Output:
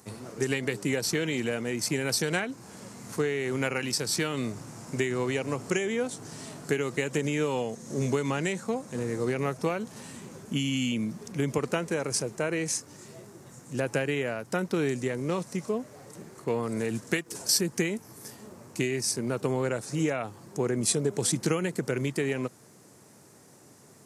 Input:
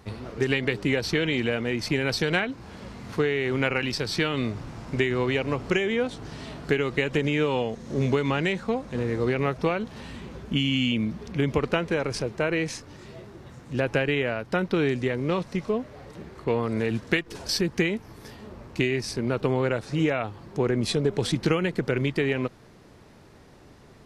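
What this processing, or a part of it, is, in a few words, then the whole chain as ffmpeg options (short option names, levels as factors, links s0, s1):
budget condenser microphone: -af "highpass=f=110:w=0.5412,highpass=f=110:w=1.3066,highshelf=f=5300:t=q:w=1.5:g=13.5,volume=0.668"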